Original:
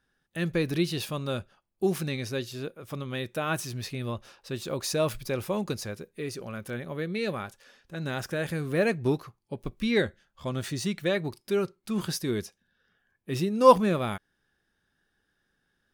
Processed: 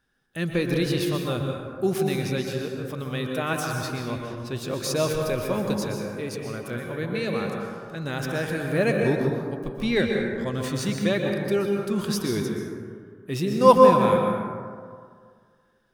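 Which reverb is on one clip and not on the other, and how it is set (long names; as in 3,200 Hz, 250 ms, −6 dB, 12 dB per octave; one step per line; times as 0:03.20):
dense smooth reverb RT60 2 s, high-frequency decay 0.35×, pre-delay 110 ms, DRR 1 dB
level +1.5 dB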